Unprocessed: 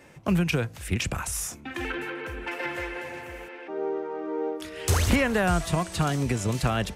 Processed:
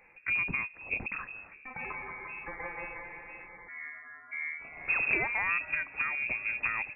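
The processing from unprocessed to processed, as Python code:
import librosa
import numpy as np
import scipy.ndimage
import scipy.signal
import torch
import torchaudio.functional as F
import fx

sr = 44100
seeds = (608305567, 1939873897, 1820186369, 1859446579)

y = fx.highpass(x, sr, hz=fx.line((3.57, 340.0), (4.31, 980.0)), slope=24, at=(3.57, 4.31), fade=0.02)
y = fx.freq_invert(y, sr, carrier_hz=2600)
y = y * librosa.db_to_amplitude(-7.5)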